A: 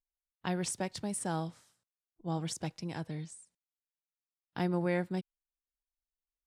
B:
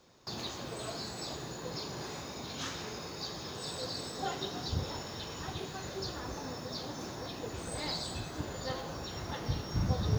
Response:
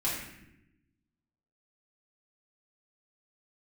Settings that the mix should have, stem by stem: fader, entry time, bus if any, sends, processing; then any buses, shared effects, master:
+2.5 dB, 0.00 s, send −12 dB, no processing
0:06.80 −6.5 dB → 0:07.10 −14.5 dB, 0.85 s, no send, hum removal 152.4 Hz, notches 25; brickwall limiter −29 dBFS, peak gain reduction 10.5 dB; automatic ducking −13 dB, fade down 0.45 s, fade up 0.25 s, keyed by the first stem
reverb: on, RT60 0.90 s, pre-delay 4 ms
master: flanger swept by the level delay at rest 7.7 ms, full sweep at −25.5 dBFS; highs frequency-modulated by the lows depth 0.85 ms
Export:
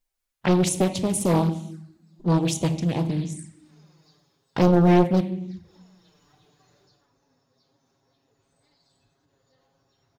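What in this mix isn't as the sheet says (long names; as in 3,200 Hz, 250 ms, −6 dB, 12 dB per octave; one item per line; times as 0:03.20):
stem A +2.5 dB → +12.5 dB
stem B −6.5 dB → −17.0 dB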